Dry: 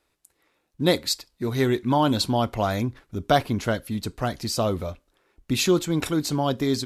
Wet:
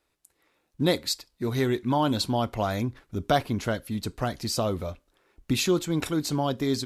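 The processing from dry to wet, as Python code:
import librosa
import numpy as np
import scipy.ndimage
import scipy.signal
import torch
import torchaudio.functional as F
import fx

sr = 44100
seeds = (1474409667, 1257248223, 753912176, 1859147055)

y = fx.recorder_agc(x, sr, target_db=-12.5, rise_db_per_s=5.6, max_gain_db=30)
y = y * 10.0 ** (-3.5 / 20.0)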